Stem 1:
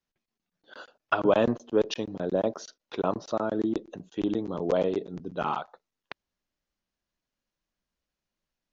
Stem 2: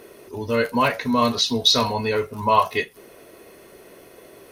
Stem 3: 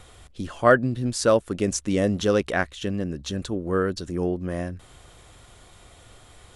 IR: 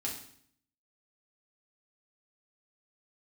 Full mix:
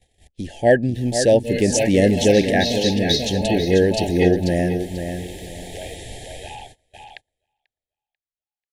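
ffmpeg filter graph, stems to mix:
-filter_complex "[0:a]highpass=1300,highshelf=f=5500:g=-4,adelay=1050,volume=0.75,asplit=2[s0][s1];[s1]volume=0.562[s2];[1:a]adelay=950,volume=0.794,asplit=2[s3][s4];[s4]volume=0.708[s5];[2:a]dynaudnorm=f=180:g=5:m=2,volume=1.12,asplit=3[s6][s7][s8];[s7]volume=0.376[s9];[s8]apad=whole_len=241176[s10];[s3][s10]sidechaincompress=threshold=0.112:ratio=8:attack=7.6:release=202[s11];[s2][s5][s9]amix=inputs=3:normalize=0,aecho=0:1:490|980|1470|1960:1|0.23|0.0529|0.0122[s12];[s0][s11][s6][s12]amix=inputs=4:normalize=0,agate=range=0.0631:threshold=0.00562:ratio=16:detection=peak,dynaudnorm=f=240:g=9:m=2.24,asuperstop=centerf=1200:order=20:qfactor=1.6"

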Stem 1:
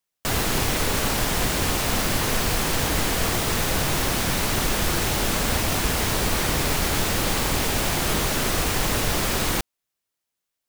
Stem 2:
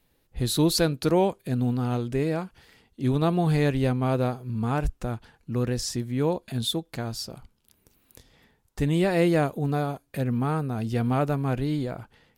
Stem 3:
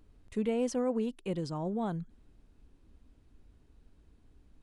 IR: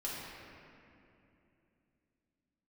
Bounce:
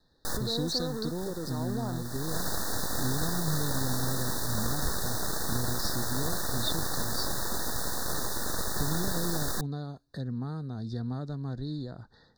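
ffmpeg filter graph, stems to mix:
-filter_complex "[0:a]aeval=exprs='abs(val(0))':c=same,volume=0.501[s0];[1:a]acompressor=threshold=0.00708:ratio=1.5,lowpass=f=4200:t=q:w=2.2,acrossover=split=310|3000[s1][s2][s3];[s2]acompressor=threshold=0.00398:ratio=2.5[s4];[s1][s4][s3]amix=inputs=3:normalize=0,volume=1[s5];[2:a]highpass=200,alimiter=level_in=2.37:limit=0.0631:level=0:latency=1,volume=0.422,acrusher=bits=6:mix=0:aa=0.5,volume=1.33,asplit=2[s6][s7];[s7]apad=whole_len=471150[s8];[s0][s8]sidechaincompress=threshold=0.00501:ratio=10:attack=22:release=500[s9];[s9][s5][s6]amix=inputs=3:normalize=0,asuperstop=centerf=2600:order=20:qfactor=1.5"

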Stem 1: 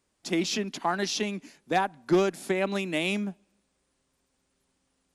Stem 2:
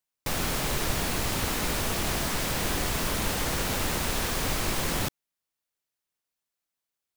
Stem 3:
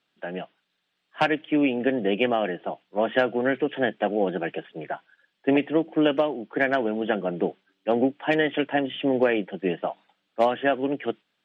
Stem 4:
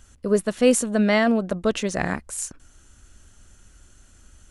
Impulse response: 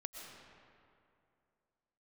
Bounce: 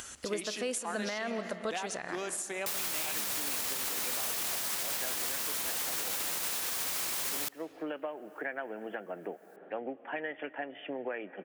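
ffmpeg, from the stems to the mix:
-filter_complex "[0:a]volume=0.422,asplit=2[s0][s1];[s1]volume=0.398[s2];[1:a]highshelf=f=5900:g=9.5,adelay=2400,volume=0.841,asplit=2[s3][s4];[s4]volume=0.0891[s5];[2:a]lowpass=f=2300:w=0.5412,lowpass=f=2300:w=1.3066,adelay=1850,volume=0.224,asplit=2[s6][s7];[s7]volume=0.2[s8];[3:a]volume=0.422,asplit=2[s9][s10];[s10]volume=0.562[s11];[4:a]atrim=start_sample=2205[s12];[s2][s5][s8][s11]amix=inputs=4:normalize=0[s13];[s13][s12]afir=irnorm=-1:irlink=0[s14];[s0][s3][s6][s9][s14]amix=inputs=5:normalize=0,highpass=f=840:p=1,acompressor=mode=upward:threshold=0.0282:ratio=2.5,alimiter=limit=0.0631:level=0:latency=1:release=155"

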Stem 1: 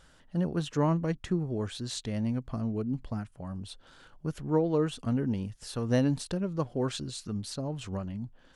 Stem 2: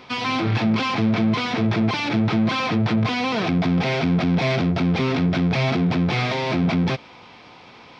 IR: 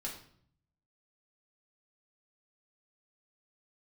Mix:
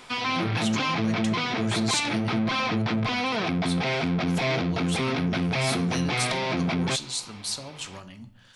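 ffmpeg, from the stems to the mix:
-filter_complex "[0:a]tiltshelf=f=1100:g=-7.5,acrossover=split=230|3000[s0][s1][s2];[s1]acompressor=threshold=0.00891:ratio=6[s3];[s0][s3][s2]amix=inputs=3:normalize=0,volume=1.12,asplit=2[s4][s5];[s5]volume=0.631[s6];[1:a]volume=0.794[s7];[2:a]atrim=start_sample=2205[s8];[s6][s8]afir=irnorm=-1:irlink=0[s9];[s4][s7][s9]amix=inputs=3:normalize=0,lowshelf=f=490:g=-5"

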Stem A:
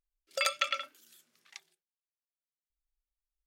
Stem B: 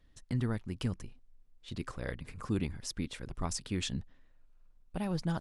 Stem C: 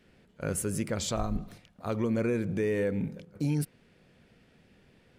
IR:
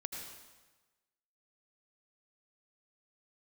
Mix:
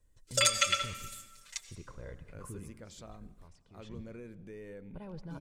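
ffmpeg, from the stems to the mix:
-filter_complex "[0:a]equalizer=f=8000:w=0.98:g=15,aecho=1:1:6.7:0.97,volume=0.631,asplit=2[s0][s1];[s1]volume=0.562[s2];[1:a]lowpass=f=1400:p=1,alimiter=level_in=1.78:limit=0.0631:level=0:latency=1:release=10,volume=0.562,volume=1.58,afade=t=out:st=2.54:d=0.2:silence=0.223872,afade=t=in:st=3.78:d=0.23:silence=0.223872,asplit=2[s3][s4];[s4]volume=0.473[s5];[2:a]adelay=1900,volume=0.119[s6];[s0][s3]amix=inputs=2:normalize=0,aecho=1:1:2:0.65,alimiter=limit=0.188:level=0:latency=1:release=406,volume=1[s7];[3:a]atrim=start_sample=2205[s8];[s2][s5]amix=inputs=2:normalize=0[s9];[s9][s8]afir=irnorm=-1:irlink=0[s10];[s6][s7][s10]amix=inputs=3:normalize=0"

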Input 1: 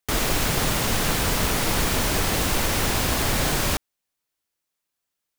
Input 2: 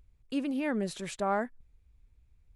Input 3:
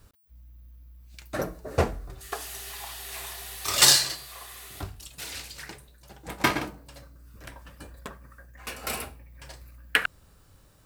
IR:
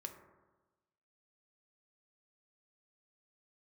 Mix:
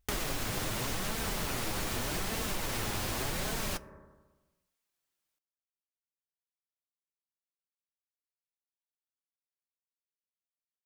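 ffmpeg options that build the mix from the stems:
-filter_complex "[0:a]flanger=delay=4.4:depth=5.4:regen=48:speed=0.84:shape=sinusoidal,volume=0.794,asplit=2[s0][s1];[s1]volume=0.596[s2];[1:a]volume=0.178[s3];[3:a]atrim=start_sample=2205[s4];[s2][s4]afir=irnorm=-1:irlink=0[s5];[s0][s3][s5]amix=inputs=3:normalize=0,acompressor=threshold=0.0251:ratio=4"

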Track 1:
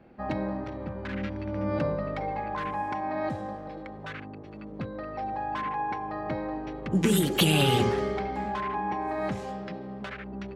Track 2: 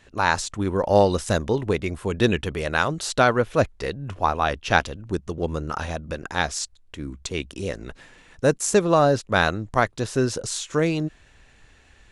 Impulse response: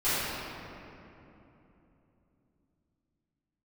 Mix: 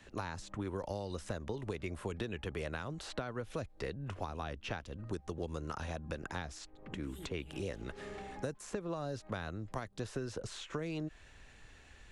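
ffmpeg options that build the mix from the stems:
-filter_complex "[0:a]volume=0.178[s0];[1:a]acompressor=threshold=0.0794:ratio=6,volume=0.668,asplit=2[s1][s2];[s2]apad=whole_len=465687[s3];[s0][s3]sidechaincompress=threshold=0.00355:ratio=16:attack=34:release=177[s4];[s4][s1]amix=inputs=2:normalize=0,acrossover=split=86|330|3000[s5][s6][s7][s8];[s5]acompressor=threshold=0.00398:ratio=4[s9];[s6]acompressor=threshold=0.00631:ratio=4[s10];[s7]acompressor=threshold=0.00891:ratio=4[s11];[s8]acompressor=threshold=0.00158:ratio=4[s12];[s9][s10][s11][s12]amix=inputs=4:normalize=0"

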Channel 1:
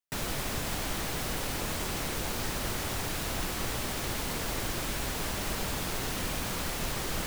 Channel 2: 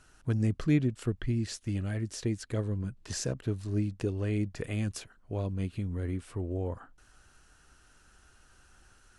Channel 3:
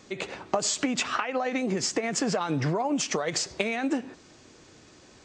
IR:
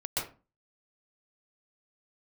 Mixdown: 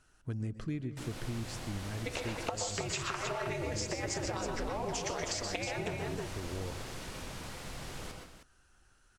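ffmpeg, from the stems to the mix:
-filter_complex "[0:a]lowpass=10000,adelay=850,volume=0.178,asplit=3[s0][s1][s2];[s1]volume=0.562[s3];[s2]volume=0.422[s4];[1:a]volume=0.422,asplit=3[s5][s6][s7];[s6]volume=0.133[s8];[s7]volume=0.126[s9];[2:a]aeval=exprs='val(0)*sin(2*PI*110*n/s)':c=same,equalizer=f=220:t=o:w=0.96:g=-8.5,adelay=1950,volume=0.944,asplit=3[s10][s11][s12];[s11]volume=0.422[s13];[s12]volume=0.631[s14];[3:a]atrim=start_sample=2205[s15];[s3][s8][s13]amix=inputs=3:normalize=0[s16];[s16][s15]afir=irnorm=-1:irlink=0[s17];[s4][s9][s14]amix=inputs=3:normalize=0,aecho=0:1:315:1[s18];[s0][s5][s10][s17][s18]amix=inputs=5:normalize=0,acompressor=threshold=0.0251:ratio=10"

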